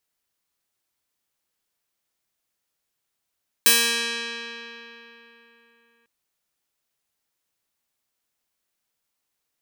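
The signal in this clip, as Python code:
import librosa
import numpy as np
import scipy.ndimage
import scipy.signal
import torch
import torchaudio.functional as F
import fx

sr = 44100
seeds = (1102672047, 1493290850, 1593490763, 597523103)

y = fx.pluck(sr, length_s=2.4, note=58, decay_s=3.65, pick=0.33, brightness='bright')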